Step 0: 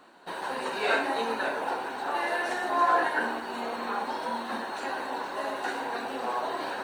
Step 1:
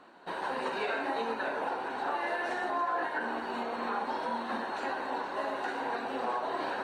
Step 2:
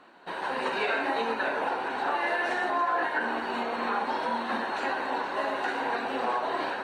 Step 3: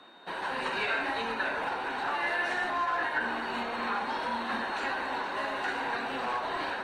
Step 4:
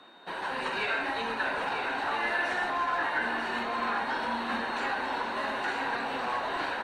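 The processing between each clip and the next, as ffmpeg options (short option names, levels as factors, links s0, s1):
-af "aemphasis=mode=reproduction:type=50kf,alimiter=limit=0.0708:level=0:latency=1:release=225"
-af "equalizer=f=2400:t=o:w=1.4:g=4,dynaudnorm=f=330:g=3:m=1.5"
-filter_complex "[0:a]aeval=exprs='val(0)+0.00141*sin(2*PI*3700*n/s)':c=same,acrossover=split=220|990|2500[s0][s1][s2][s3];[s1]asoftclip=type=tanh:threshold=0.0141[s4];[s0][s4][s2][s3]amix=inputs=4:normalize=0"
-af "aecho=1:1:949:0.501"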